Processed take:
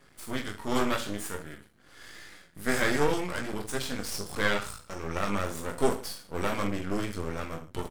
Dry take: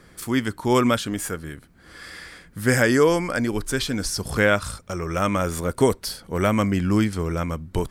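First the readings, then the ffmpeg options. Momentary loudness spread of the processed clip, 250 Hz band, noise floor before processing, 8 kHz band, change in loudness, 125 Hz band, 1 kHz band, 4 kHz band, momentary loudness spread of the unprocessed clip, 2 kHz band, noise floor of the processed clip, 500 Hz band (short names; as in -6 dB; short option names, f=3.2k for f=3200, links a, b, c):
17 LU, -10.5 dB, -52 dBFS, -7.5 dB, -9.0 dB, -12.0 dB, -6.5 dB, -6.0 dB, 14 LU, -7.0 dB, -58 dBFS, -9.0 dB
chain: -filter_complex "[0:a]flanger=delay=7.1:depth=7:regen=55:speed=0.52:shape=triangular,lowshelf=f=160:g=-5.5,asplit=2[a][b];[b]aecho=0:1:20|44|72.8|107.4|148.8:0.631|0.398|0.251|0.158|0.1[c];[a][c]amix=inputs=2:normalize=0,aeval=exprs='max(val(0),0)':c=same,volume=-1.5dB"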